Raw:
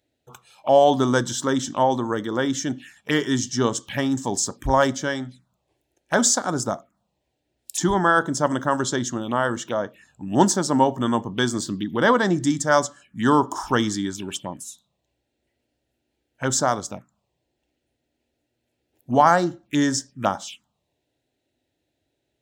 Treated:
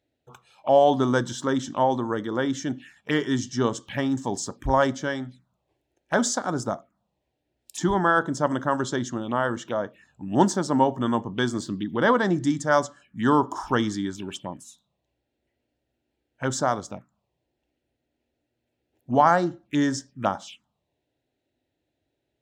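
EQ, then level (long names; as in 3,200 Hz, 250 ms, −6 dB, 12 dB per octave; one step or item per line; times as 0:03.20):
low-pass filter 3,300 Hz 6 dB per octave
−2.0 dB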